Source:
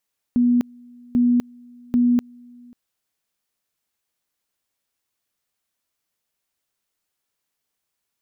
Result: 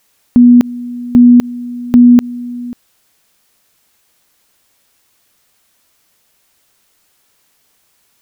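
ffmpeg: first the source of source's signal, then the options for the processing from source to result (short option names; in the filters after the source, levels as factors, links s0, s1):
-f lavfi -i "aevalsrc='pow(10,(-13.5-28.5*gte(mod(t,0.79),0.25))/20)*sin(2*PI*243*t)':d=2.37:s=44100"
-af "alimiter=level_in=12.6:limit=0.891:release=50:level=0:latency=1"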